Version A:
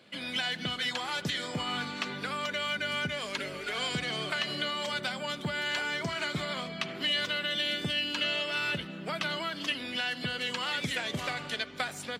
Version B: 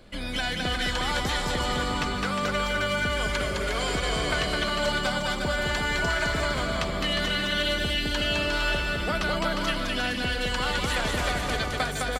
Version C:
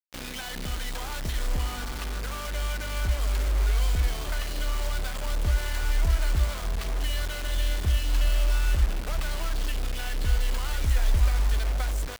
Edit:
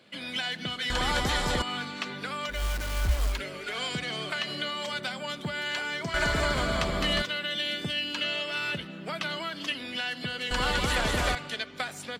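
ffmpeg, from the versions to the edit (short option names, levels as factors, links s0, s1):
-filter_complex "[1:a]asplit=3[s0][s1][s2];[0:a]asplit=5[s3][s4][s5][s6][s7];[s3]atrim=end=0.902[s8];[s0]atrim=start=0.898:end=1.622[s9];[s4]atrim=start=1.618:end=2.64[s10];[2:a]atrim=start=2.48:end=3.42[s11];[s5]atrim=start=3.26:end=6.142[s12];[s1]atrim=start=6.138:end=7.222[s13];[s6]atrim=start=7.218:end=10.512[s14];[s2]atrim=start=10.508:end=11.352[s15];[s7]atrim=start=11.348[s16];[s8][s9]acrossfade=d=0.004:c1=hsin:c2=hsin[s17];[s17][s10]acrossfade=d=0.004:c1=hsin:c2=hsin[s18];[s18][s11]acrossfade=d=0.16:c1=tri:c2=tri[s19];[s19][s12]acrossfade=d=0.16:c1=tri:c2=tri[s20];[s20][s13]acrossfade=d=0.004:c1=hsin:c2=hsin[s21];[s21][s14]acrossfade=d=0.004:c1=hsin:c2=hsin[s22];[s22][s15]acrossfade=d=0.004:c1=hsin:c2=hsin[s23];[s23][s16]acrossfade=d=0.004:c1=hsin:c2=hsin"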